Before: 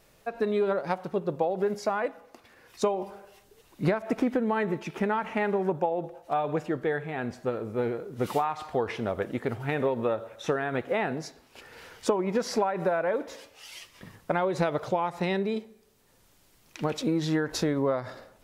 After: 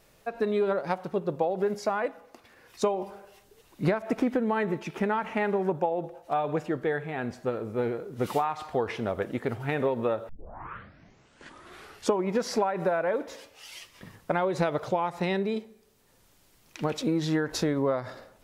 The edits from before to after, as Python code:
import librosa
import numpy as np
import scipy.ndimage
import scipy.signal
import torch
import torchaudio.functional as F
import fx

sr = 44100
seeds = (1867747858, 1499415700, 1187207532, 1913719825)

y = fx.edit(x, sr, fx.tape_start(start_s=10.29, length_s=1.85), tone=tone)